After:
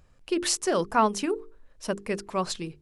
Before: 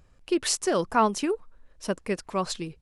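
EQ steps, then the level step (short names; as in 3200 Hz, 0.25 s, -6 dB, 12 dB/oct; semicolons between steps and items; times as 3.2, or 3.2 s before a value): notches 50/100/150/200/250/300/350/400/450 Hz; 0.0 dB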